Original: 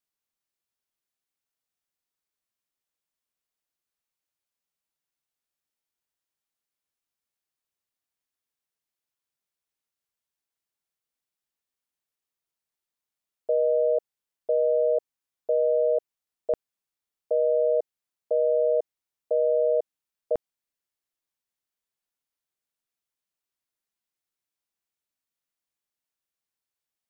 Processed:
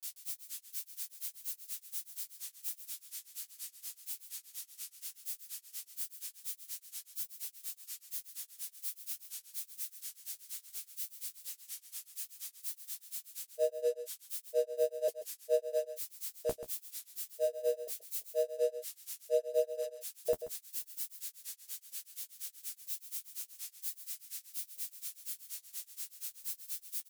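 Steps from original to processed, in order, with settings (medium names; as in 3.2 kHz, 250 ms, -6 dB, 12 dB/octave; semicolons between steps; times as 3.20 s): zero-crossing glitches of -33 dBFS; peaking EQ 570 Hz -8 dB 2.4 oct; de-hum 65.37 Hz, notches 5; granulator 128 ms, grains 4.2 per s, pitch spread up and down by 0 st; flange 0.14 Hz, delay 9.4 ms, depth 9.4 ms, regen -20%; delay 134 ms -12 dB; trim +6.5 dB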